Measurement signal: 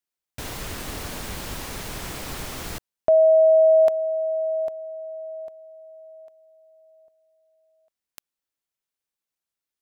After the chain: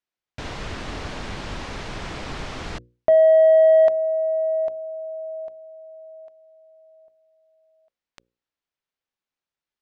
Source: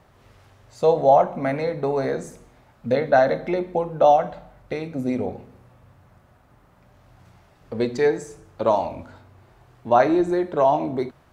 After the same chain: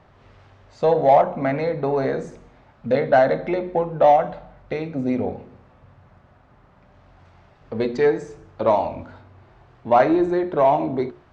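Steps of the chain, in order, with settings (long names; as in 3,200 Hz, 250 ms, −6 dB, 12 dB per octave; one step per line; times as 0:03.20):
Gaussian smoothing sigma 1.6 samples
mains-hum notches 60/120/180/240/300/360/420/480/540 Hz
in parallel at −4 dB: soft clipping −15.5 dBFS
on the sum: level −1.5 dB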